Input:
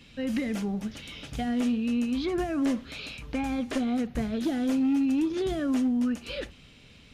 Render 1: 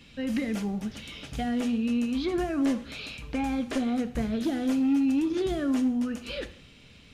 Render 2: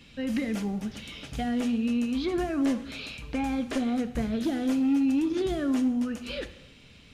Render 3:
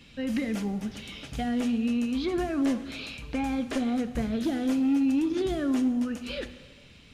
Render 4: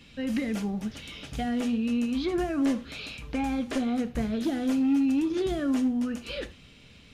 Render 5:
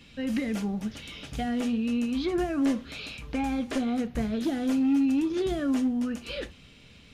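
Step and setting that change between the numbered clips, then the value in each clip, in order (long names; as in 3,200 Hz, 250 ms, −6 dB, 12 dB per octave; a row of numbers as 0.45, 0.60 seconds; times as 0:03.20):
reverb whose tail is shaped and stops, gate: 220, 330, 520, 130, 80 milliseconds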